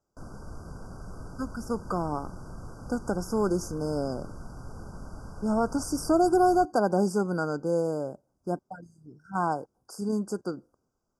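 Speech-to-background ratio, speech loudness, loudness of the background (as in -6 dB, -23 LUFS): 16.0 dB, -28.5 LUFS, -44.5 LUFS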